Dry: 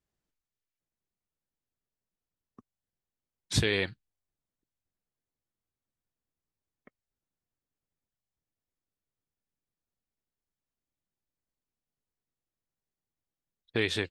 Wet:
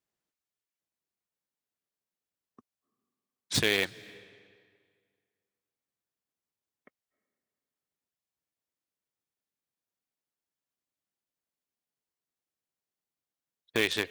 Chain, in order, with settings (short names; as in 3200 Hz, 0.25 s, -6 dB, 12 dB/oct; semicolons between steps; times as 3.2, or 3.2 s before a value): HPF 290 Hz 6 dB/oct; in parallel at -7 dB: bit-crush 4-bit; on the sum: reverb RT60 2.0 s, pre-delay 0.224 s, DRR 22 dB